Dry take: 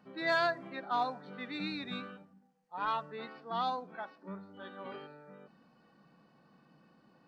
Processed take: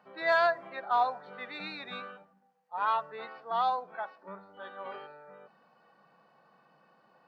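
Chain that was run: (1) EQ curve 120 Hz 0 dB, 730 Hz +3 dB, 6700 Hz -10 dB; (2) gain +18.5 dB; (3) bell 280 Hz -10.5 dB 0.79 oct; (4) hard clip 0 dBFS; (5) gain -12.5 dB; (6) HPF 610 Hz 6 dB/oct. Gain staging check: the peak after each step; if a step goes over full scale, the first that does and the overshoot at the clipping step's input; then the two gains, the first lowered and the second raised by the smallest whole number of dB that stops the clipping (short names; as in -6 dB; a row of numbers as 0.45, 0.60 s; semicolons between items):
-20.0, -1.5, -2.5, -2.5, -15.0, -16.5 dBFS; no overload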